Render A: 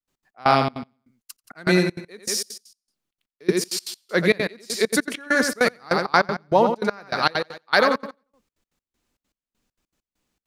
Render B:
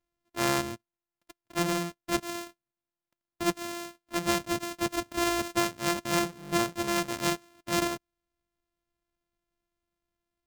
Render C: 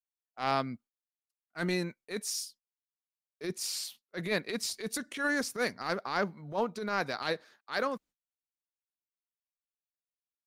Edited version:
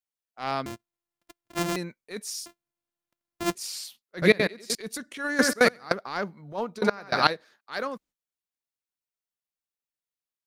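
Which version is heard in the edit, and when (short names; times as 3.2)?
C
0.66–1.76 from B
2.46–3.55 from B
4.22–4.75 from A
5.39–5.92 from A
6.81–7.27 from A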